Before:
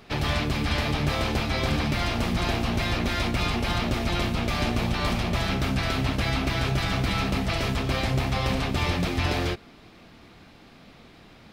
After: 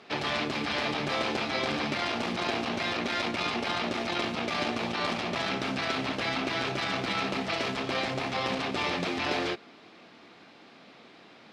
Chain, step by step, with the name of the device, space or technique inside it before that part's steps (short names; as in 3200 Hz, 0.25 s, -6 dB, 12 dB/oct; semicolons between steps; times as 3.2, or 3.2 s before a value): public-address speaker with an overloaded transformer (core saturation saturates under 150 Hz; BPF 270–6000 Hz)